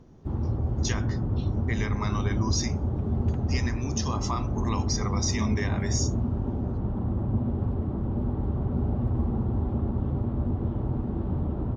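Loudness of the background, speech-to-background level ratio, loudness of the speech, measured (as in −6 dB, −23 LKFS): −29.0 LKFS, −3.5 dB, −32.5 LKFS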